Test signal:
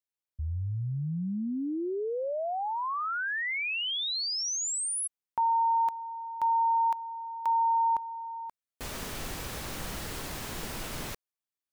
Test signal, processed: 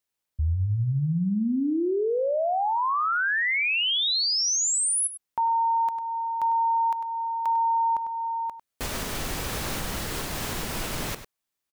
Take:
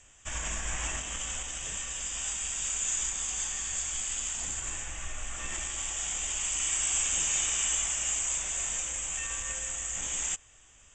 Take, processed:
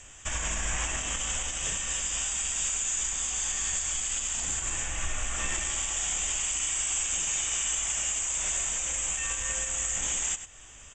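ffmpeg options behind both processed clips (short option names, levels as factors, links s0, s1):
-filter_complex "[0:a]asplit=2[s0][s1];[s1]adelay=99.13,volume=0.251,highshelf=f=4000:g=-2.23[s2];[s0][s2]amix=inputs=2:normalize=0,alimiter=level_in=1.68:limit=0.0631:level=0:latency=1:release=285,volume=0.596,volume=2.66"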